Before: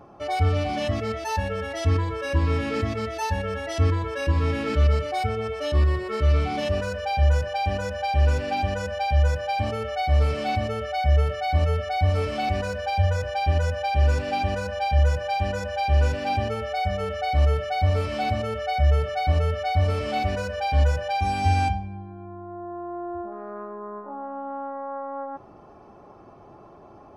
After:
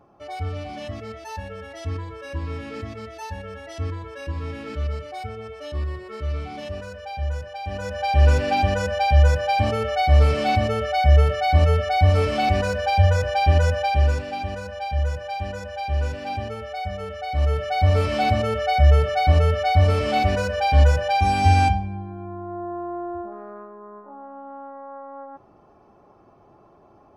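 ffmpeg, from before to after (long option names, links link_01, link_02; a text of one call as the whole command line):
ffmpeg -i in.wav -af "volume=14dB,afade=type=in:start_time=7.63:duration=0.65:silence=0.237137,afade=type=out:start_time=13.73:duration=0.56:silence=0.354813,afade=type=in:start_time=17.28:duration=0.77:silence=0.354813,afade=type=out:start_time=22.59:duration=1.13:silence=0.298538" out.wav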